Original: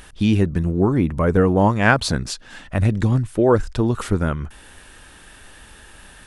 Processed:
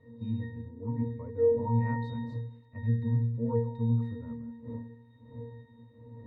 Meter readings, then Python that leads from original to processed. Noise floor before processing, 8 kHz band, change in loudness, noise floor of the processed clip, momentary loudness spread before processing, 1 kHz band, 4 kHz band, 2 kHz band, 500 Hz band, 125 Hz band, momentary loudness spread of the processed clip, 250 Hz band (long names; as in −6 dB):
−46 dBFS, below −40 dB, −12.5 dB, −58 dBFS, 11 LU, −17.0 dB, below −25 dB, −24.5 dB, −11.0 dB, −9.5 dB, 18 LU, −14.0 dB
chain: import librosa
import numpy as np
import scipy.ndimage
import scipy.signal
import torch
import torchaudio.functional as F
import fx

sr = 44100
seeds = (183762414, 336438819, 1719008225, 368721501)

y = fx.reverse_delay(x, sr, ms=156, wet_db=-11)
y = fx.dmg_wind(y, sr, seeds[0], corner_hz=360.0, level_db=-30.0)
y = fx.octave_resonator(y, sr, note='A#', decay_s=0.63)